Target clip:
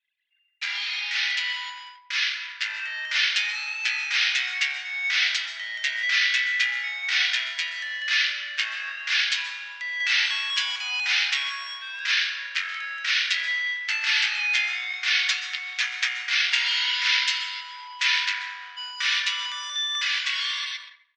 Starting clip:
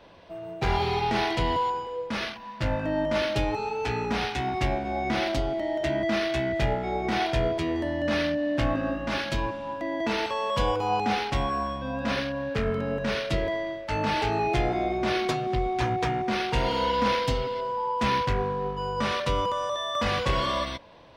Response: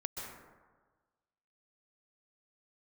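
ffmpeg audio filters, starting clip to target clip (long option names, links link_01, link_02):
-filter_complex "[0:a]asplit=2[link_01][link_02];[1:a]atrim=start_sample=2205[link_03];[link_02][link_03]afir=irnorm=-1:irlink=0,volume=-2dB[link_04];[link_01][link_04]amix=inputs=2:normalize=0,dynaudnorm=framelen=320:gausssize=13:maxgain=6dB,asuperpass=centerf=3600:order=8:qfactor=0.66,anlmdn=0.0251,asplit=2[link_05][link_06];[link_06]adelay=88,lowpass=frequency=4000:poles=1,volume=-16.5dB,asplit=2[link_07][link_08];[link_08]adelay=88,lowpass=frequency=4000:poles=1,volume=0.44,asplit=2[link_09][link_10];[link_10]adelay=88,lowpass=frequency=4000:poles=1,volume=0.44,asplit=2[link_11][link_12];[link_12]adelay=88,lowpass=frequency=4000:poles=1,volume=0.44[link_13];[link_05][link_07][link_09][link_11][link_13]amix=inputs=5:normalize=0,volume=2.5dB"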